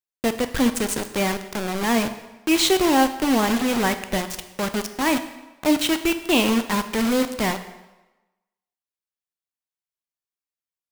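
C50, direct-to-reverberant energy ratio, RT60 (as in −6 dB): 11.5 dB, 9.0 dB, 1.1 s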